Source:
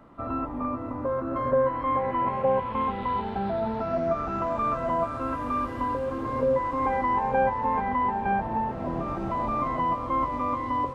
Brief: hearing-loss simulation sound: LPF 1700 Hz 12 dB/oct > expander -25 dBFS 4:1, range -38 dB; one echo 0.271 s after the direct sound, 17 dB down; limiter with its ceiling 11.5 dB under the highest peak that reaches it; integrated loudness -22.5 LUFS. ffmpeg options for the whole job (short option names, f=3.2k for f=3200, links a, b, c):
-af "alimiter=level_in=1dB:limit=-24dB:level=0:latency=1,volume=-1dB,lowpass=1.7k,aecho=1:1:271:0.141,agate=range=-38dB:threshold=-25dB:ratio=4,volume=29.5dB"